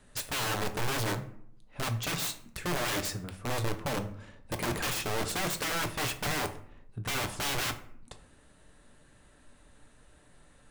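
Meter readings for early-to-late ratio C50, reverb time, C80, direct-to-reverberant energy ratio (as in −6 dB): 13.0 dB, 0.65 s, 16.0 dB, 6.0 dB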